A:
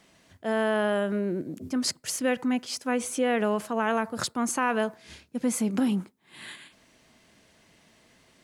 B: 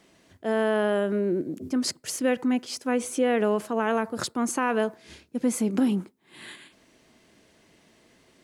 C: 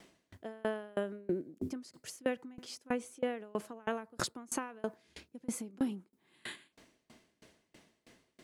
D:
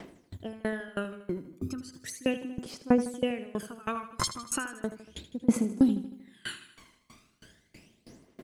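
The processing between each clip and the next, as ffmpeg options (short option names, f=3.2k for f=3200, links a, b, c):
-af "equalizer=f=360:t=o:w=1:g=6.5,volume=-1dB"
-af "acompressor=threshold=-29dB:ratio=6,aeval=exprs='val(0)*pow(10,-30*if(lt(mod(3.1*n/s,1),2*abs(3.1)/1000),1-mod(3.1*n/s,1)/(2*abs(3.1)/1000),(mod(3.1*n/s,1)-2*abs(3.1)/1000)/(1-2*abs(3.1)/1000))/20)':c=same,volume=3dB"
-filter_complex "[0:a]aphaser=in_gain=1:out_gain=1:delay=1:decay=0.76:speed=0.36:type=triangular,asplit=2[a][b];[b]aecho=0:1:78|156|234|312|390|468:0.224|0.123|0.0677|0.0372|0.0205|0.0113[c];[a][c]amix=inputs=2:normalize=0,volume=3dB"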